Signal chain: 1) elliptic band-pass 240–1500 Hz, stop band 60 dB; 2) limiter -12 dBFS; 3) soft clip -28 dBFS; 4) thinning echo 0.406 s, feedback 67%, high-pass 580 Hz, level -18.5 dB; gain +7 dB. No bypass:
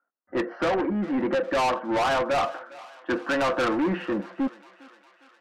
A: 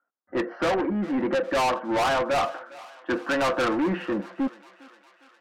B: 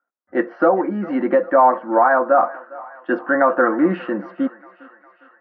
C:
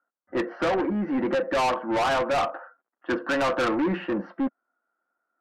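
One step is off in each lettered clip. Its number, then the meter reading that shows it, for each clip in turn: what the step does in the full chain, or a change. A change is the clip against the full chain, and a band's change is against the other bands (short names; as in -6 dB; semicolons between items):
2, 8 kHz band +2.5 dB; 3, distortion -6 dB; 4, echo-to-direct -17.5 dB to none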